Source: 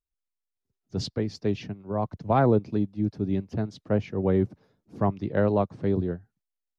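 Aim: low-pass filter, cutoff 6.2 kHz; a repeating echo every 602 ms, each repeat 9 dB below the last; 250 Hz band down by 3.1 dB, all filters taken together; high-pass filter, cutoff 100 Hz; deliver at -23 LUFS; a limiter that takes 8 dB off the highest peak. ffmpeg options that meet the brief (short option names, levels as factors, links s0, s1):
-af "highpass=100,lowpass=6200,equalizer=f=250:t=o:g=-4,alimiter=limit=0.119:level=0:latency=1,aecho=1:1:602|1204|1806|2408:0.355|0.124|0.0435|0.0152,volume=2.66"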